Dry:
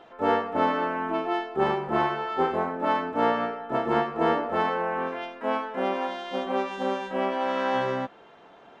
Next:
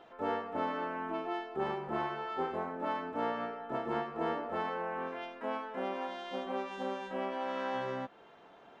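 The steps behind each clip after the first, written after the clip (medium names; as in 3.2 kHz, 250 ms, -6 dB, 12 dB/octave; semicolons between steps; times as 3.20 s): compression 1.5:1, threshold -34 dBFS, peak gain reduction 6 dB; trim -5.5 dB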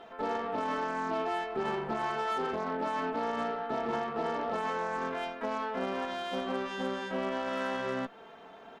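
comb 4.5 ms, depth 44%; peak limiter -29 dBFS, peak gain reduction 9.5 dB; Chebyshev shaper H 6 -24 dB, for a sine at -29 dBFS; trim +5 dB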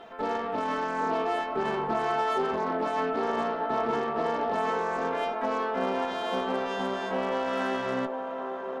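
feedback echo behind a band-pass 797 ms, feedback 56%, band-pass 630 Hz, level -4 dB; trim +3 dB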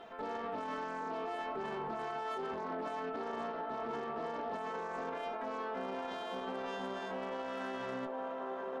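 peak limiter -27 dBFS, peak gain reduction 11 dB; trim -4.5 dB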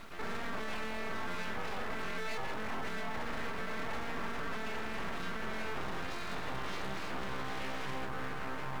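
added noise pink -66 dBFS; full-wave rectifier; trim +4 dB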